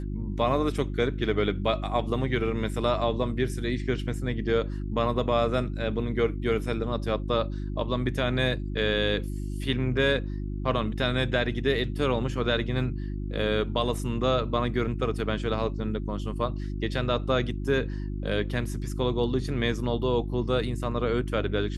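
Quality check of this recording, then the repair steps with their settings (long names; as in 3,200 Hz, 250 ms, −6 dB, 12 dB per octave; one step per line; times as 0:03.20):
mains hum 50 Hz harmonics 7 −32 dBFS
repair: hum removal 50 Hz, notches 7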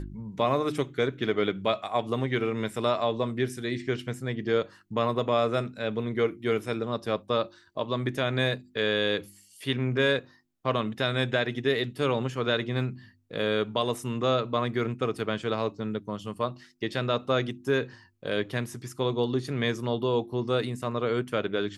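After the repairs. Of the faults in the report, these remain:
none of them is left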